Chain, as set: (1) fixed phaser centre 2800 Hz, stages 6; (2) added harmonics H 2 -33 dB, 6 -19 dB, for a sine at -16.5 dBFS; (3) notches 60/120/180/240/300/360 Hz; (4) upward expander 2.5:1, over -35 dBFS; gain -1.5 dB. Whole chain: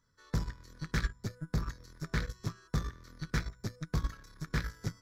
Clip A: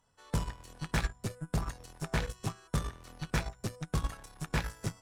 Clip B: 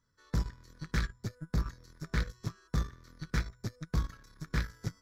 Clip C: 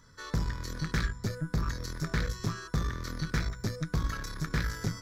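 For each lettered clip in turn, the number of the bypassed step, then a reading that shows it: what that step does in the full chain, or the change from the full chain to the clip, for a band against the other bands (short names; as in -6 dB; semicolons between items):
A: 1, 8 kHz band +3.5 dB; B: 3, momentary loudness spread change -1 LU; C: 4, momentary loudness spread change -5 LU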